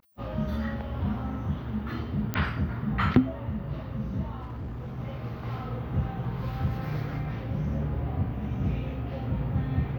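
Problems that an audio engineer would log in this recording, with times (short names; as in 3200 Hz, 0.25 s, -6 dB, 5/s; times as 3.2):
2.34 pop -14 dBFS
4.41–4.99 clipped -32.5 dBFS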